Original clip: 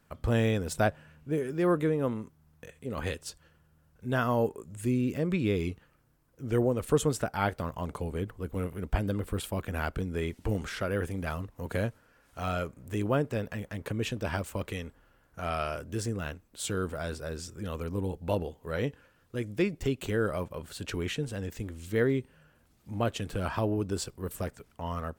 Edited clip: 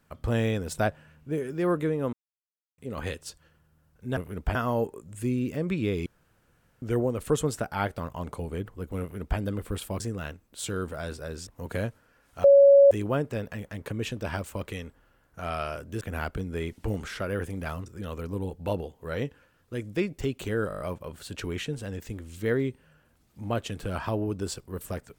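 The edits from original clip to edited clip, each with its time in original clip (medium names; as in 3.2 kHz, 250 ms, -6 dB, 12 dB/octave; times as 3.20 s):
2.13–2.78 s: mute
5.68–6.44 s: room tone
8.63–9.01 s: copy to 4.17 s
9.62–11.47 s: swap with 16.01–17.48 s
12.44–12.91 s: bleep 559 Hz -11.5 dBFS
20.30 s: stutter 0.02 s, 7 plays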